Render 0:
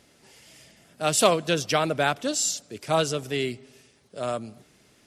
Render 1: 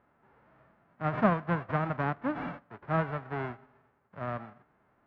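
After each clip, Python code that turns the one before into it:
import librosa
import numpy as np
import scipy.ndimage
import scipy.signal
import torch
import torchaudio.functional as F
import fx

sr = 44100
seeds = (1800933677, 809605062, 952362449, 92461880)

y = fx.envelope_flatten(x, sr, power=0.1)
y = scipy.signal.sosfilt(scipy.signal.butter(4, 1500.0, 'lowpass', fs=sr, output='sos'), y)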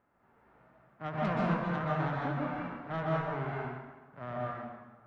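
y = fx.hum_notches(x, sr, base_hz=50, count=3)
y = 10.0 ** (-23.5 / 20.0) * np.tanh(y / 10.0 ** (-23.5 / 20.0))
y = fx.rev_plate(y, sr, seeds[0], rt60_s=1.3, hf_ratio=0.75, predelay_ms=115, drr_db=-4.0)
y = y * librosa.db_to_amplitude(-5.5)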